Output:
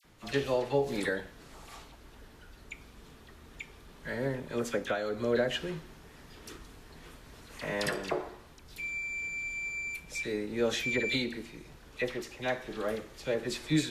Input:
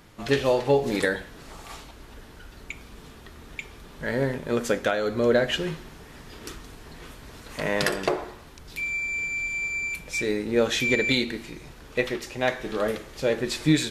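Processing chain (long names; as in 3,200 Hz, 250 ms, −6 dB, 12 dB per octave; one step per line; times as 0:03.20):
all-pass dispersion lows, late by 46 ms, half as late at 1,700 Hz
level −7.5 dB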